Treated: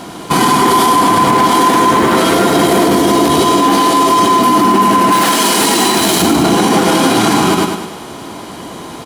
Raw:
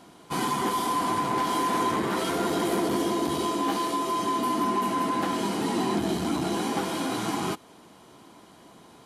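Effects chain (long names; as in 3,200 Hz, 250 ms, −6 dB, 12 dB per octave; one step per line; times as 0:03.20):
floating-point word with a short mantissa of 4 bits
0:05.12–0:06.22: spectral tilt +3 dB per octave
repeating echo 100 ms, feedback 49%, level −6 dB
boost into a limiter +23 dB
level −1 dB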